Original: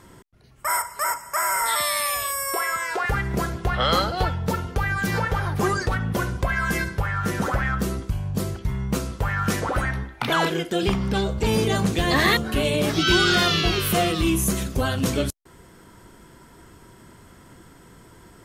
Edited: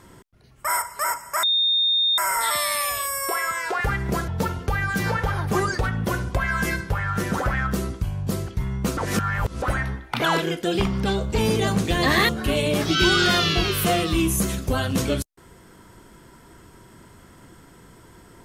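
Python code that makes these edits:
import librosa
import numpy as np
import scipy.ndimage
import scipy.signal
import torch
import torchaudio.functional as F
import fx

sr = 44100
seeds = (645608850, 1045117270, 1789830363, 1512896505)

y = fx.edit(x, sr, fx.insert_tone(at_s=1.43, length_s=0.75, hz=3660.0, db=-17.0),
    fx.cut(start_s=3.53, length_s=0.83),
    fx.reverse_span(start_s=9.05, length_s=0.65), tone=tone)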